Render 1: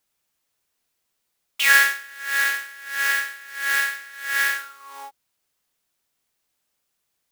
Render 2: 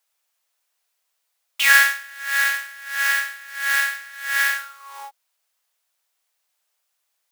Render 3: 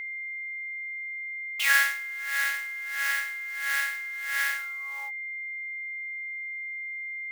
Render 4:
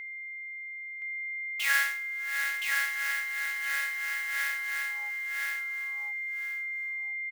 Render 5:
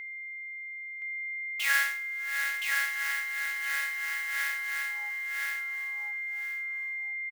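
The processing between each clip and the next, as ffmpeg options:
-af "highpass=f=540:w=0.5412,highpass=f=540:w=1.3066,volume=1.5dB"
-af "aeval=exprs='val(0)+0.0562*sin(2*PI*2100*n/s)':c=same,volume=-8dB"
-af "aecho=1:1:1020|2040|3060:0.668|0.147|0.0323,volume=-4.5dB"
-filter_complex "[0:a]asplit=2[a][b];[b]adelay=1341,volume=-15dB,highshelf=f=4k:g=-30.2[c];[a][c]amix=inputs=2:normalize=0"

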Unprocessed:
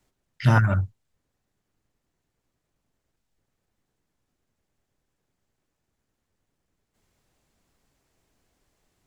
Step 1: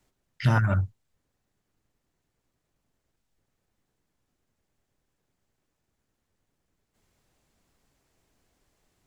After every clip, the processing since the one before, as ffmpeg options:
-af "acompressor=threshold=-19dB:ratio=2.5"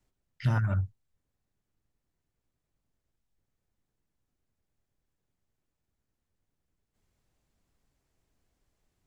-af "lowshelf=f=140:g=7.5,volume=-8.5dB"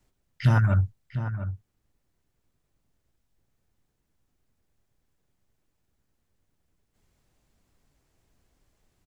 -filter_complex "[0:a]asplit=2[a][b];[b]adelay=699.7,volume=-10dB,highshelf=f=4k:g=-15.7[c];[a][c]amix=inputs=2:normalize=0,volume=6.5dB"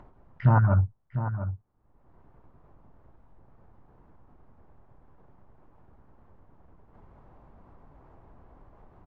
-af "lowpass=f=1k:t=q:w=2.1,acompressor=mode=upward:threshold=-38dB:ratio=2.5"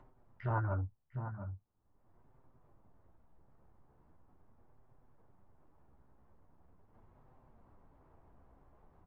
-filter_complex "[0:a]flanger=delay=7.7:depth=7.1:regen=-29:speed=0.41:shape=sinusoidal,acrossover=split=340[a][b];[a]asoftclip=type=tanh:threshold=-26.5dB[c];[c][b]amix=inputs=2:normalize=0,volume=-6dB"

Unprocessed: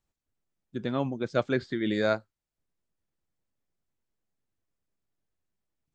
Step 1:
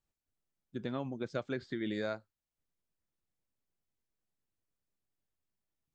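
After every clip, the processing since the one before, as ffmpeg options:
-af "acompressor=threshold=-27dB:ratio=6,volume=-5dB"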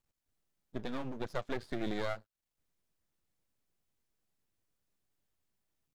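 -af "aeval=exprs='max(val(0),0)':c=same,volume=5dB"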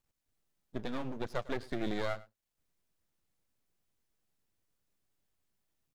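-af "aecho=1:1:103:0.1,volume=1dB"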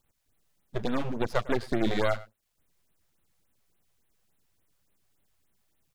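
-af "afftfilt=real='re*(1-between(b*sr/1024,230*pow(6200/230,0.5+0.5*sin(2*PI*3.5*pts/sr))/1.41,230*pow(6200/230,0.5+0.5*sin(2*PI*3.5*pts/sr))*1.41))':imag='im*(1-between(b*sr/1024,230*pow(6200/230,0.5+0.5*sin(2*PI*3.5*pts/sr))/1.41,230*pow(6200/230,0.5+0.5*sin(2*PI*3.5*pts/sr))*1.41))':win_size=1024:overlap=0.75,volume=9dB"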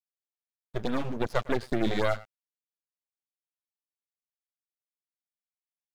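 -af "aeval=exprs='sgn(val(0))*max(abs(val(0))-0.00531,0)':c=same"

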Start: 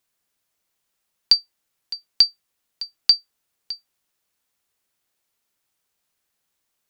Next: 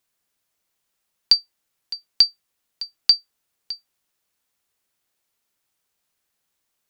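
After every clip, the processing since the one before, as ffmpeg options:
-af anull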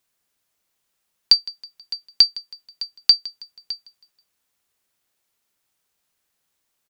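-af "aecho=1:1:161|322|483:0.1|0.044|0.0194,volume=1.5dB"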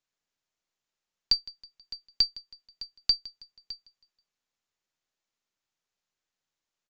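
-af "aeval=exprs='if(lt(val(0),0),0.708*val(0),val(0))':c=same,aresample=16000,aresample=44100,volume=-9dB"

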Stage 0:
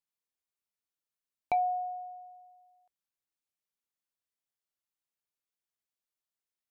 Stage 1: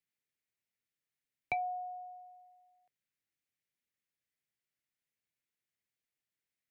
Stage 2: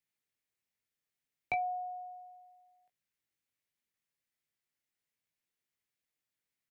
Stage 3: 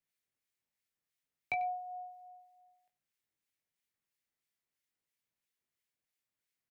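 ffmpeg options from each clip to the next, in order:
-filter_complex "[0:a]equalizer=f=125:t=o:w=1:g=10,equalizer=f=250:t=o:w=1:g=4,equalizer=f=500:t=o:w=1:g=3,equalizer=f=1k:t=o:w=1:g=-8,equalizer=f=2k:t=o:w=1:g=11,acrossover=split=130|660[a][b][c];[b]acompressor=threshold=-48dB:ratio=6[d];[a][d][c]amix=inputs=3:normalize=0,volume=-3dB"
-filter_complex "[0:a]asplit=2[a][b];[b]adelay=19,volume=-7dB[c];[a][c]amix=inputs=2:normalize=0"
-filter_complex "[0:a]acrossover=split=1500[a][b];[a]aeval=exprs='val(0)*(1-0.5/2+0.5/2*cos(2*PI*3*n/s))':c=same[c];[b]aeval=exprs='val(0)*(1-0.5/2-0.5/2*cos(2*PI*3*n/s))':c=same[d];[c][d]amix=inputs=2:normalize=0,aecho=1:1:94:0.126,volume=1dB"

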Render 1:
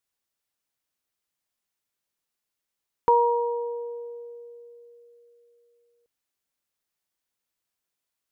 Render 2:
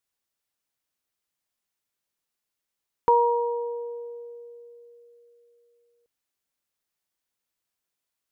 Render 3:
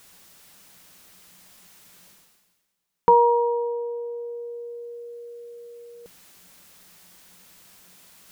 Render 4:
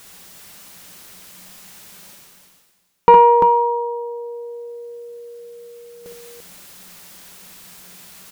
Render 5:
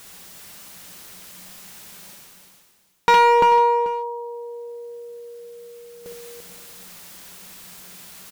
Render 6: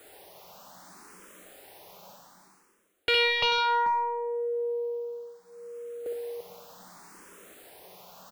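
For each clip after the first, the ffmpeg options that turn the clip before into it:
-af anull
-af "equalizer=f=180:w=6.6:g=14,areverse,acompressor=mode=upward:threshold=-33dB:ratio=2.5,areverse,volume=4dB"
-af "aecho=1:1:60|65|343:0.355|0.355|0.473,acontrast=50,volume=2dB"
-af "asoftclip=type=hard:threshold=-11.5dB,aecho=1:1:438:0.178"
-filter_complex "[0:a]acrossover=split=290|1200[a][b][c];[b]aeval=exprs='0.316*sin(PI/2*3.55*val(0)/0.316)':c=same[d];[a][d][c]amix=inputs=3:normalize=0,asplit=2[e][f];[f]afreqshift=0.66[g];[e][g]amix=inputs=2:normalize=1,volume=-8.5dB"

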